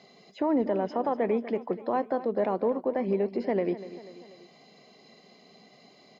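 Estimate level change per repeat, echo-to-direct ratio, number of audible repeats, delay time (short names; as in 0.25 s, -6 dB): -5.0 dB, -13.5 dB, 3, 0.244 s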